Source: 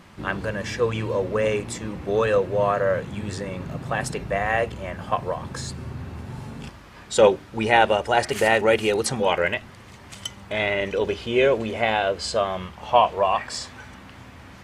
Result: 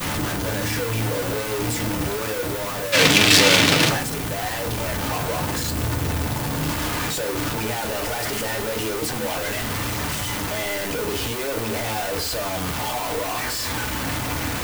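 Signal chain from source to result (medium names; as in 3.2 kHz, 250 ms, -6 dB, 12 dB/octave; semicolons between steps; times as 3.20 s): one-bit comparator; 2.92–3.90 s: frequency weighting D; in parallel at -2 dB: gain riding 2 s; on the sum: expander -13 dBFS; added noise blue -39 dBFS; on a send at -4 dB: reverberation RT60 0.40 s, pre-delay 3 ms; on the sum: trim +2.5 dB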